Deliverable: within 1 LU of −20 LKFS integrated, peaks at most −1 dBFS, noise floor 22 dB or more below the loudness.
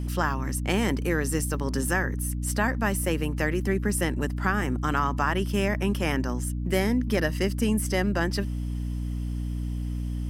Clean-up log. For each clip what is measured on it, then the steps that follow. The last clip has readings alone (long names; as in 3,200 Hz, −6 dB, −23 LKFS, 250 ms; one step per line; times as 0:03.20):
mains hum 60 Hz; hum harmonics up to 300 Hz; level of the hum −27 dBFS; integrated loudness −27.0 LKFS; sample peak −9.5 dBFS; target loudness −20.0 LKFS
→ hum removal 60 Hz, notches 5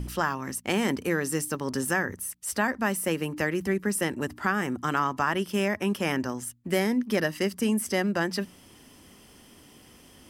mains hum none found; integrated loudness −28.0 LKFS; sample peak −11.0 dBFS; target loudness −20.0 LKFS
→ level +8 dB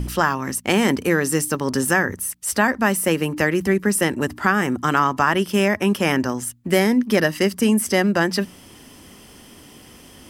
integrated loudness −20.0 LKFS; sample peak −3.0 dBFS; background noise floor −46 dBFS